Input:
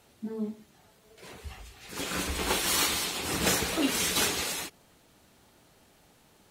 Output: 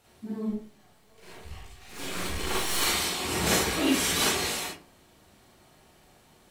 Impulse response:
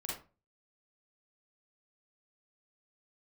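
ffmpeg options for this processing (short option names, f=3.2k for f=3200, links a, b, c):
-filter_complex "[0:a]asettb=1/sr,asplit=3[a][b][c];[a]atrim=end=0.494[d];[b]atrim=start=0.49:end=2.82,asetpts=PTS-STARTPTS,afade=t=in:d=0.004:c=qsin,afade=t=out:st=2.326:d=0.004:c=qsin,aeval=exprs='if(lt(val(0),0),0.251*val(0),val(0))':c=same[e];[c]atrim=start=2.816[f];[d][e]acrossfade=d=0.004:c1=hsin:c2=qsin[g];[g][f]acrossfade=d=0.004:c1=qsin:c2=hsin[h];[1:a]atrim=start_sample=2205[i];[h][i]afir=irnorm=-1:irlink=0,volume=2dB"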